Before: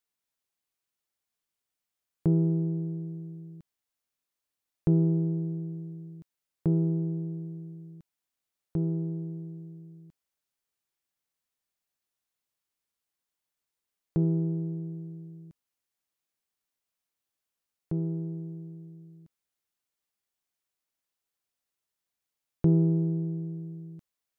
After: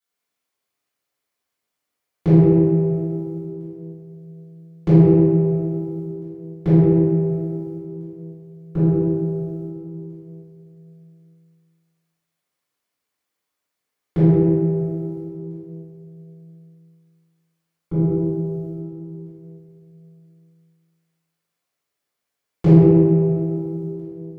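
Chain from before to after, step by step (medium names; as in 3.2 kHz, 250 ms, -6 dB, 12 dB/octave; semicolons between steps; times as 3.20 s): high-pass 170 Hz 6 dB/octave; gate -45 dBFS, range -8 dB; reverberation RT60 2.6 s, pre-delay 3 ms, DRR -13.5 dB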